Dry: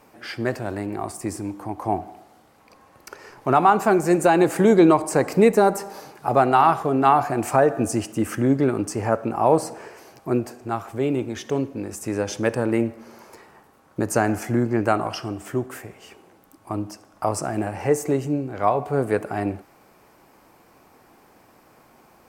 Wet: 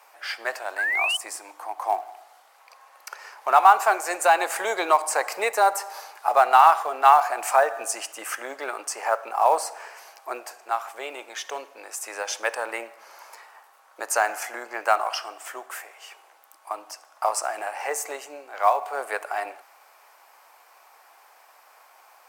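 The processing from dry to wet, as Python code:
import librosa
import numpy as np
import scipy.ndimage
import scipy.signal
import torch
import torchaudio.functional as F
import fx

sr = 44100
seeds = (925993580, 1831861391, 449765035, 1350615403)

p1 = scipy.signal.sosfilt(scipy.signal.butter(4, 690.0, 'highpass', fs=sr, output='sos'), x)
p2 = fx.spec_paint(p1, sr, seeds[0], shape='rise', start_s=0.78, length_s=0.39, low_hz=1500.0, high_hz=3100.0, level_db=-27.0)
p3 = fx.quant_float(p2, sr, bits=2)
y = p2 + (p3 * librosa.db_to_amplitude(-8.0))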